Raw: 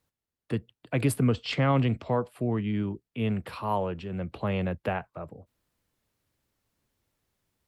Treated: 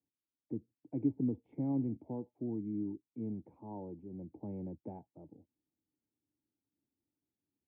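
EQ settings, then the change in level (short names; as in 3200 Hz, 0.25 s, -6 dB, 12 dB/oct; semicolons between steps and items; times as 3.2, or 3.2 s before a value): vocal tract filter u; HPF 80 Hz; bell 1200 Hz -9.5 dB 0.81 oct; -1.0 dB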